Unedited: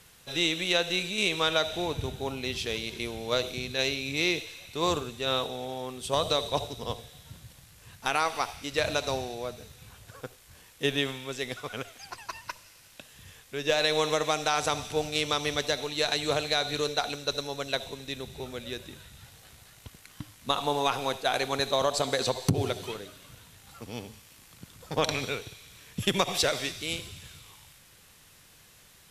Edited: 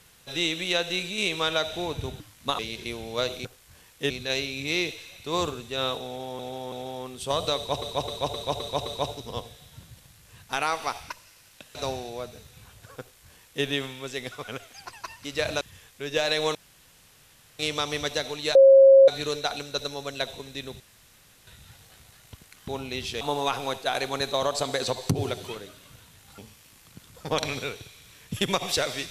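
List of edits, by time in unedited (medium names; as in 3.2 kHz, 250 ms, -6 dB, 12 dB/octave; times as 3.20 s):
2.20–2.73 s: swap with 20.21–20.60 s
5.55–5.88 s: loop, 3 plays
6.39–6.65 s: loop, 6 plays
8.63–9.00 s: swap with 12.49–13.14 s
10.25–10.90 s: copy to 3.59 s
14.08–15.12 s: room tone
16.08–16.61 s: bleep 541 Hz -9.5 dBFS
18.33–19.00 s: room tone
23.77–24.04 s: delete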